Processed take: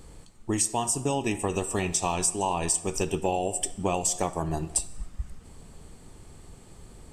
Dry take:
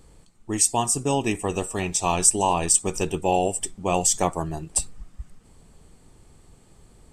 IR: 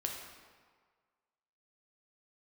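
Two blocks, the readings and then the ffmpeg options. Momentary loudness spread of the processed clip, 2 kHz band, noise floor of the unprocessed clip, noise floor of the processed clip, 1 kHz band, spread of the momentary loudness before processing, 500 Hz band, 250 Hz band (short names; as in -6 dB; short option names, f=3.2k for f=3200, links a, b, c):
14 LU, -3.5 dB, -55 dBFS, -51 dBFS, -5.0 dB, 9 LU, -3.5 dB, -3.0 dB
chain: -filter_complex "[0:a]acompressor=threshold=-28dB:ratio=6,asplit=2[a][b];[1:a]atrim=start_sample=2205,afade=t=out:st=0.34:d=0.01,atrim=end_sample=15435[c];[b][c]afir=irnorm=-1:irlink=0,volume=-9dB[d];[a][d]amix=inputs=2:normalize=0,volume=2dB"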